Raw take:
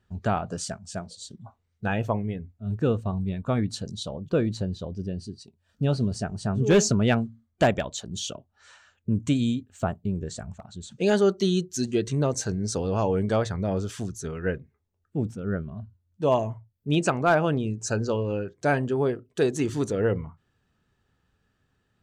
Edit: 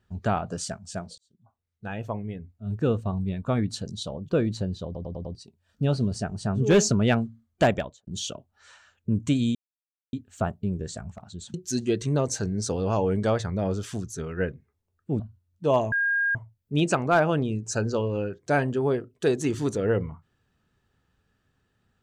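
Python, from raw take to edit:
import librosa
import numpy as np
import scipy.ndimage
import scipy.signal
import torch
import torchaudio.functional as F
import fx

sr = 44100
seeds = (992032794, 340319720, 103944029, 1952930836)

y = fx.studio_fade_out(x, sr, start_s=7.74, length_s=0.33)
y = fx.edit(y, sr, fx.fade_in_span(start_s=1.18, length_s=1.76),
    fx.stutter_over(start_s=4.85, slice_s=0.1, count=5),
    fx.insert_silence(at_s=9.55, length_s=0.58),
    fx.cut(start_s=10.96, length_s=0.64),
    fx.cut(start_s=15.26, length_s=0.52),
    fx.insert_tone(at_s=16.5, length_s=0.43, hz=1620.0, db=-21.0), tone=tone)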